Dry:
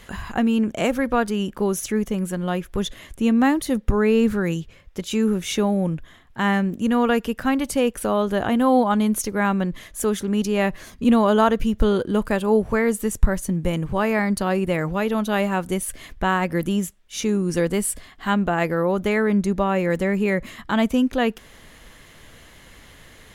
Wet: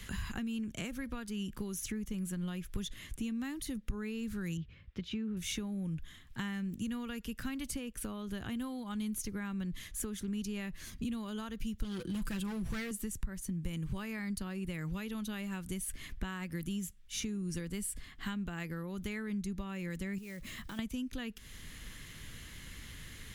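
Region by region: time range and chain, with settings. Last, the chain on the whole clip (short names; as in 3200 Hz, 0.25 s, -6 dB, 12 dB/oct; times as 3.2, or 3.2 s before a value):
4.57–5.37 HPF 64 Hz + air absorption 320 m
11.84–12.91 comb 5.9 ms, depth 64% + hard clip -18.5 dBFS + fast leveller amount 50%
20.18–20.79 block floating point 5-bit + bell 600 Hz +6 dB 0.71 oct + compressor 4:1, threshold -35 dBFS
whole clip: compressor 6:1, threshold -26 dBFS; passive tone stack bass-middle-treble 6-0-2; three-band squash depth 40%; gain +10 dB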